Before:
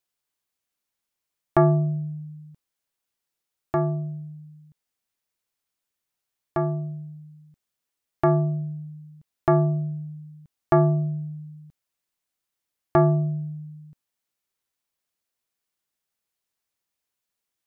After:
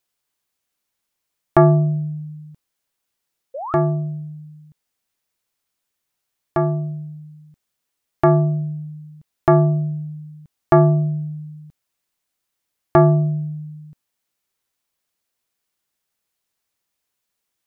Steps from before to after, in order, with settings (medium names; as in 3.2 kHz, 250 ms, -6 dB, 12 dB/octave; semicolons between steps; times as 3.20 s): painted sound rise, 3.54–3.74 s, 500–1400 Hz -34 dBFS; trim +5.5 dB